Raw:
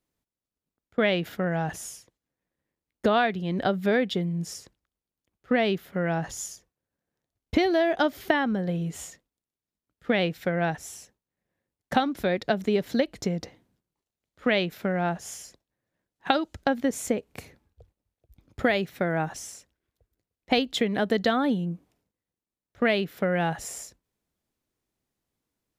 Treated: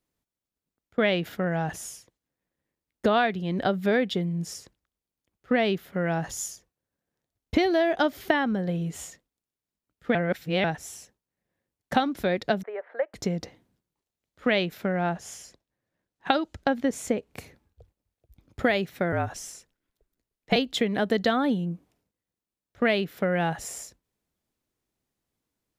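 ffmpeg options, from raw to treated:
-filter_complex "[0:a]asettb=1/sr,asplit=3[s0][s1][s2];[s0]atrim=end=5.994[s3];[s1]atrim=start=5.99:end=6.51,asetpts=PTS-STARTPTS,afade=t=in:d=0.004:c=qsin,afade=t=out:st=0.516:d=0.004:c=qsin,highshelf=f=8400:g=5.5[s4];[s2]atrim=start=6.506[s5];[s3][s4]acrossfade=d=0.004:c1=hsin:c2=qsin[s6];[s6][s5]acrossfade=d=0.004:c1=qsin:c2=hsin,asettb=1/sr,asplit=3[s7][s8][s9];[s7]atrim=end=12.634[s10];[s8]atrim=start=12.63:end=13.14,asetpts=PTS-STARTPTS,afade=t=in:d=0.004:c=qsin,afade=t=out:st=0.506:d=0.004:c=qsin,asuperpass=centerf=980:order=8:qfactor=0.7[s11];[s9]atrim=start=13.136[s12];[s10][s11]acrossfade=d=0.004:c1=hsin:c2=qsin[s13];[s13][s12]acrossfade=d=0.004:c1=qsin:c2=hsin,asettb=1/sr,asplit=3[s14][s15][s16];[s14]atrim=end=14.834[s17];[s15]atrim=start=14.83:end=17.33,asetpts=PTS-STARTPTS,afade=t=in:d=0.004:c=qsin,afade=t=out:st=2.496:d=0.004:c=qsin,highshelf=f=9400:g=-7.5[s18];[s16]atrim=start=17.326[s19];[s17][s18]acrossfade=d=0.004:c1=hsin:c2=qsin[s20];[s20][s19]acrossfade=d=0.004:c1=qsin:c2=hsin,asettb=1/sr,asplit=3[s21][s22][s23];[s21]atrim=end=19.124[s24];[s22]atrim=start=19.12:end=20.56,asetpts=PTS-STARTPTS,afade=t=in:d=0.004:c=qsin,afade=t=out:st=1.436:d=0.004:c=qsin,afreqshift=-53[s25];[s23]atrim=start=20.556[s26];[s24][s25]acrossfade=d=0.004:c1=hsin:c2=qsin[s27];[s27][s26]acrossfade=d=0.004:c1=qsin:c2=hsin,asplit=3[s28][s29][s30];[s28]atrim=end=10.152[s31];[s29]atrim=start=10.148:end=10.642,asetpts=PTS-STARTPTS,areverse[s32];[s30]atrim=start=10.638[s33];[s31][s32]acrossfade=d=0.004:c1=hsin:c2=hsin[s34];[s34][s33]acrossfade=d=0.004:c1=hsin:c2=hsin"

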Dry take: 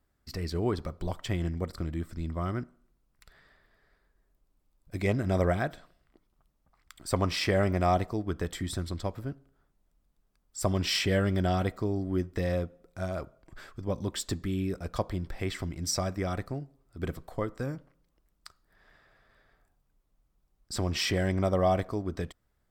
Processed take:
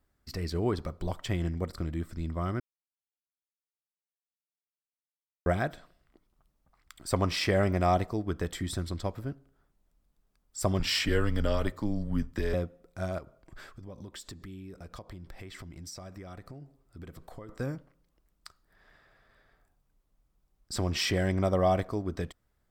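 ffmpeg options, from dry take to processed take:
-filter_complex "[0:a]asettb=1/sr,asplit=3[s0][s1][s2];[s0]atrim=end=10.794[s3];[s1]atrim=start=10.79:end=12.54,asetpts=PTS-STARTPTS,afade=t=in:d=0.004:c=qsin,afade=t=out:st=1.746:d=0.004:c=qsin,afreqshift=-110[s4];[s2]atrim=start=12.536[s5];[s3][s4]acrossfade=d=0.004:c1=hsin:c2=qsin[s6];[s6][s5]acrossfade=d=0.004:c1=qsin:c2=hsin,asettb=1/sr,asplit=3[s7][s8][s9];[s7]atrim=end=13.184[s10];[s8]atrim=start=13.18:end=17.49,asetpts=PTS-STARTPTS,afade=t=in:d=0.004:c=qsin,afade=t=out:st=4.306:d=0.004:c=qsin,acompressor=threshold=0.00891:ratio=6:attack=3.2:release=140:knee=1:detection=peak[s11];[s9]atrim=start=17.486[s12];[s10][s11]acrossfade=d=0.004:c1=hsin:c2=qsin[s13];[s13][s12]acrossfade=d=0.004:c1=qsin:c2=hsin,asplit=3[s14][s15][s16];[s14]atrim=end=2.6,asetpts=PTS-STARTPTS,afade=t=out:st=2.596:d=0.004:c=hsin[s17];[s15]atrim=start=2.6:end=5.46,asetpts=PTS-STARTPTS,volume=0[s18];[s16]atrim=start=5.46,asetpts=PTS-STARTPTS,afade=t=in:d=0.004:c=hsin[s19];[s17][s18][s19]concat=n=3:v=0:a=1"

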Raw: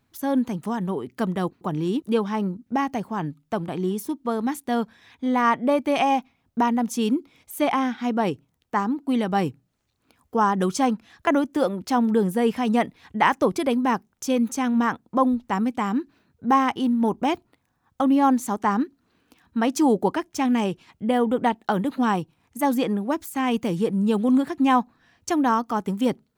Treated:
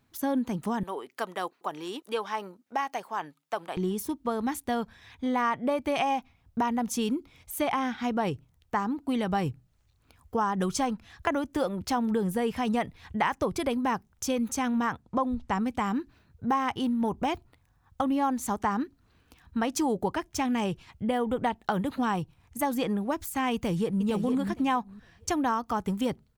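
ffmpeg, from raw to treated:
-filter_complex "[0:a]asettb=1/sr,asplit=3[s0][s1][s2];[s0]atrim=end=0.834[s3];[s1]atrim=start=0.83:end=3.77,asetpts=PTS-STARTPTS,afade=t=in:d=0.004:c=qsin,afade=t=out:st=2.936:d=0.004:c=qsin,highpass=580[s4];[s2]atrim=start=3.766[s5];[s3][s4]acrossfade=d=0.004:c1=hsin:c2=qsin[s6];[s6][s5]acrossfade=d=0.004:c1=qsin:c2=hsin,asettb=1/sr,asplit=3[s7][s8][s9];[s7]atrim=end=15.024[s10];[s8]atrim=start=15.02:end=15.66,asetpts=PTS-STARTPTS,afade=t=in:d=0.004:c=qsin,afade=t=out:st=0.636:d=0.004:c=qsin,lowpass=9200[s11];[s9]atrim=start=15.656[s12];[s10][s11]acrossfade=d=0.004:c1=hsin:c2=qsin[s13];[s13][s12]acrossfade=d=0.004:c1=qsin:c2=hsin,asplit=2[s14][s15];[s15]afade=t=in:st=23.54:d=0.01,afade=t=out:st=24.07:d=0.01,aecho=0:1:460|920|1380:0.501187|0.0751781|0.0112767[s16];[s14][s16]amix=inputs=2:normalize=0,asubboost=boost=7:cutoff=89,acompressor=threshold=0.0562:ratio=3"

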